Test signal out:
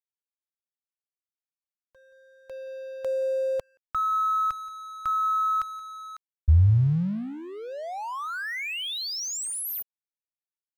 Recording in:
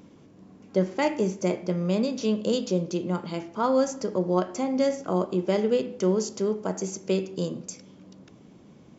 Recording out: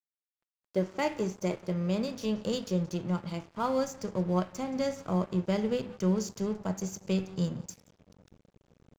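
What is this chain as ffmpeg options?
-af "aecho=1:1:176:0.0891,asubboost=boost=11:cutoff=100,aeval=exprs='sgn(val(0))*max(abs(val(0))-0.0075,0)':c=same,volume=0.668"

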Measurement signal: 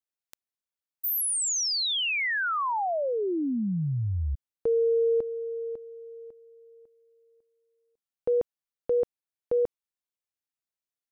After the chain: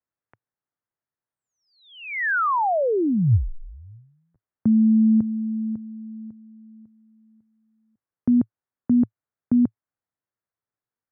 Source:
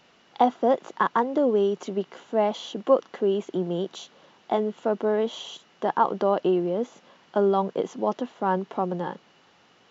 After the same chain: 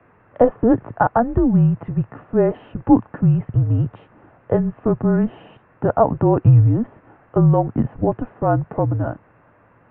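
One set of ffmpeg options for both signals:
-af "highpass=f=320:t=q:w=0.5412,highpass=f=320:t=q:w=1.307,lowpass=f=2100:t=q:w=0.5176,lowpass=f=2100:t=q:w=0.7071,lowpass=f=2100:t=q:w=1.932,afreqshift=-240,equalizer=f=110:t=o:w=0.63:g=9.5,volume=2.11"

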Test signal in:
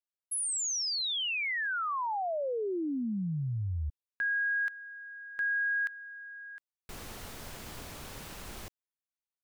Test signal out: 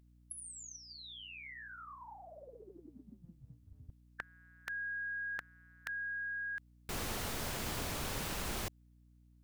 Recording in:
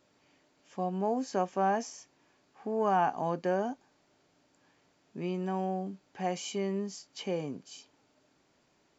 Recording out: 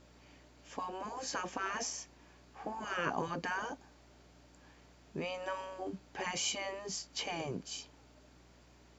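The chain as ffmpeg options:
-af "afftfilt=real='re*lt(hypot(re,im),0.0794)':imag='im*lt(hypot(re,im),0.0794)':win_size=1024:overlap=0.75,acontrast=87,aeval=exprs='val(0)+0.000891*(sin(2*PI*60*n/s)+sin(2*PI*2*60*n/s)/2+sin(2*PI*3*60*n/s)/3+sin(2*PI*4*60*n/s)/4+sin(2*PI*5*60*n/s)/5)':c=same,volume=0.841"

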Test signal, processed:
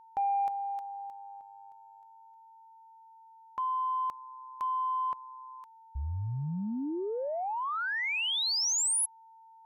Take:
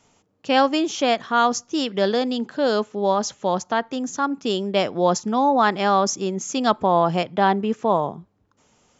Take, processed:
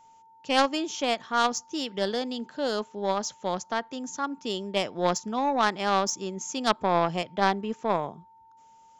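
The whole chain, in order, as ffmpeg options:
-af "aeval=exprs='val(0)+0.00631*sin(2*PI*900*n/s)':c=same,highshelf=f=3200:g=5.5,aeval=exprs='0.708*(cos(1*acos(clip(val(0)/0.708,-1,1)))-cos(1*PI/2))+0.141*(cos(3*acos(clip(val(0)/0.708,-1,1)))-cos(3*PI/2))':c=same,volume=0.841"

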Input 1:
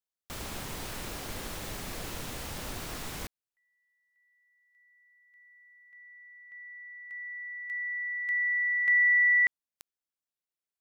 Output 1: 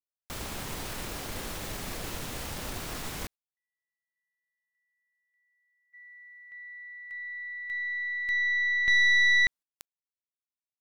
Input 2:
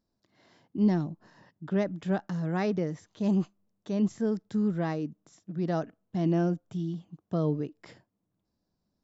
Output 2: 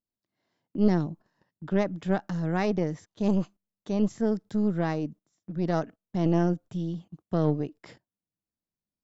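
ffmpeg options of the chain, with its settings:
-af "agate=range=0.126:threshold=0.00224:ratio=16:release=89:detection=rms,aeval=exprs='0.168*(cos(1*acos(clip(val(0)/0.168,-1,1)))-cos(1*PI/2))+0.075*(cos(2*acos(clip(val(0)/0.168,-1,1)))-cos(2*PI/2))+0.0075*(cos(5*acos(clip(val(0)/0.168,-1,1)))-cos(5*PI/2))':c=same"

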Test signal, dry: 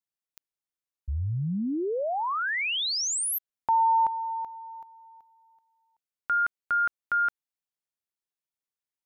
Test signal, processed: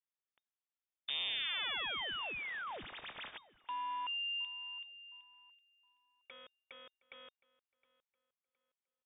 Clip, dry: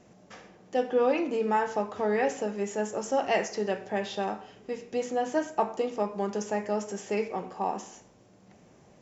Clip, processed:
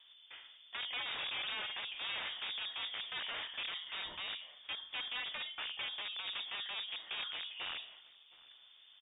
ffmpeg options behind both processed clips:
-filter_complex "[0:a]acompressor=threshold=0.0251:ratio=8:attack=7.3:release=21:knee=6:detection=rms,aeval=exprs='(mod(31.6*val(0)+1,2)-1)/31.6':c=same,lowpass=f=3100:t=q:w=0.5098,lowpass=f=3100:t=q:w=0.6013,lowpass=f=3100:t=q:w=0.9,lowpass=f=3100:t=q:w=2.563,afreqshift=-3700,asplit=2[s0][s1];[s1]adelay=715,lowpass=f=2900:p=1,volume=0.0891,asplit=2[s2][s3];[s3]adelay=715,lowpass=f=2900:p=1,volume=0.35,asplit=2[s4][s5];[s5]adelay=715,lowpass=f=2900:p=1,volume=0.35[s6];[s0][s2][s4][s6]amix=inputs=4:normalize=0,volume=0.596"

